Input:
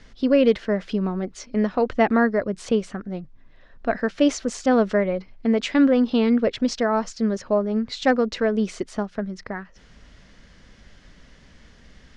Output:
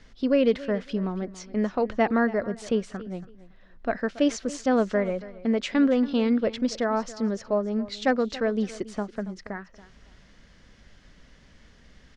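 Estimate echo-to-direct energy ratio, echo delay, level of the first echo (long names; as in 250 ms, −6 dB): −17.5 dB, 279 ms, −17.5 dB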